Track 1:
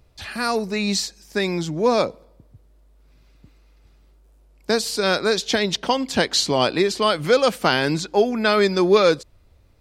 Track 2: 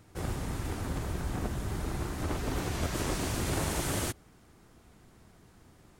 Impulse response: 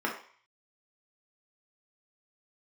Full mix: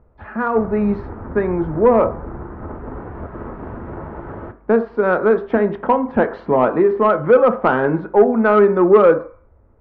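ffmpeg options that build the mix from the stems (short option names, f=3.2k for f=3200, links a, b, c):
-filter_complex "[0:a]volume=-3.5dB,asplit=2[a][b];[b]volume=-13dB[c];[1:a]alimiter=limit=-23dB:level=0:latency=1:release=258,adelay=400,volume=-3.5dB,asplit=2[d][e];[e]volume=-13.5dB[f];[2:a]atrim=start_sample=2205[g];[c][f]amix=inputs=2:normalize=0[h];[h][g]afir=irnorm=-1:irlink=0[i];[a][d][i]amix=inputs=3:normalize=0,lowpass=f=1.4k:w=0.5412,lowpass=f=1.4k:w=1.3066,acontrast=66"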